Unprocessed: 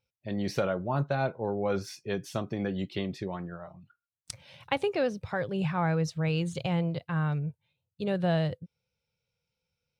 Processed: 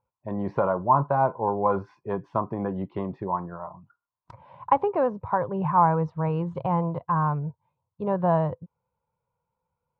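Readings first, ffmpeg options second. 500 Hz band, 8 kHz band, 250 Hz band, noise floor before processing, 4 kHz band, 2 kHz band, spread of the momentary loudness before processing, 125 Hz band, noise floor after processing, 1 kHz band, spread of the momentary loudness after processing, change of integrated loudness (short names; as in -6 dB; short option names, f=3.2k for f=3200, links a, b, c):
+4.5 dB, under -30 dB, +2.0 dB, under -85 dBFS, under -15 dB, -3.0 dB, 11 LU, +1.5 dB, -85 dBFS, +12.5 dB, 12 LU, +5.0 dB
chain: -af "lowpass=f=1k:t=q:w=10,volume=1.5dB"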